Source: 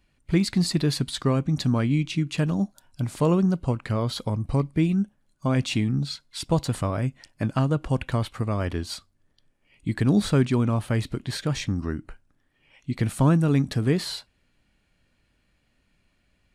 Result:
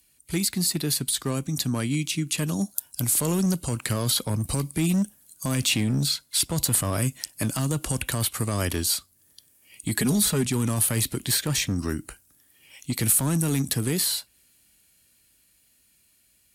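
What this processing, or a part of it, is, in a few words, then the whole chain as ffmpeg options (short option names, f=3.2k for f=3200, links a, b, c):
FM broadcast chain: -filter_complex "[0:a]asettb=1/sr,asplit=3[a][b][c];[a]atrim=end=9.974[d];[b]atrim=start=9.97:end=10.45,asetpts=PTS-STARTPTS,afade=t=in:d=0.004:c=qsin,afade=t=out:st=0.476:d=0.004:c=qsin,aecho=1:1:4.8:0.77,atrim=end_sample=21168[e];[c]atrim=start=10.446[f];[d][e]acrossfade=d=0.004:c1=hsin:c2=qsin[g];[g][f]acrossfade=d=0.004:c1=qsin:c2=hsin,highpass=f=41:w=0.5412,highpass=f=41:w=1.3066,dynaudnorm=f=380:g=17:m=11.5dB,acrossover=split=200|3100[h][i][j];[h]acompressor=threshold=-16dB:ratio=4[k];[i]acompressor=threshold=-19dB:ratio=4[l];[j]acompressor=threshold=-42dB:ratio=4[m];[k][l][m]amix=inputs=3:normalize=0,aemphasis=mode=production:type=75fm,alimiter=limit=-11.5dB:level=0:latency=1:release=19,asoftclip=type=hard:threshold=-14dB,lowpass=f=15k:w=0.5412,lowpass=f=15k:w=1.3066,aemphasis=mode=production:type=75fm,equalizer=f=330:t=o:w=0.93:g=2.5,volume=-4.5dB"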